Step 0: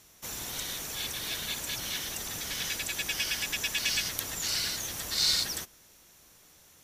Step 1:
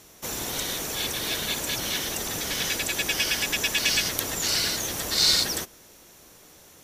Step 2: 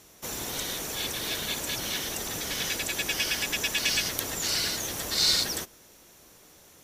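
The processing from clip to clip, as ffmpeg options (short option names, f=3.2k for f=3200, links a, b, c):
-af "equalizer=f=410:w=0.6:g=6.5,volume=5.5dB"
-af "volume=-3dB" -ar 48000 -c:a libopus -b:a 96k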